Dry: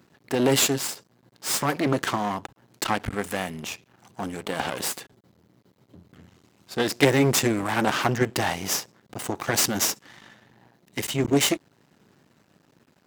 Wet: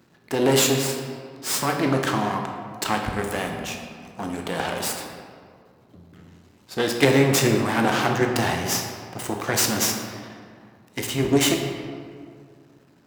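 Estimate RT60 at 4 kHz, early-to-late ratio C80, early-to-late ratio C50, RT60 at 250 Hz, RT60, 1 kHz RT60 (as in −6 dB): 1.1 s, 5.5 dB, 4.0 dB, 2.2 s, 2.1 s, 2.0 s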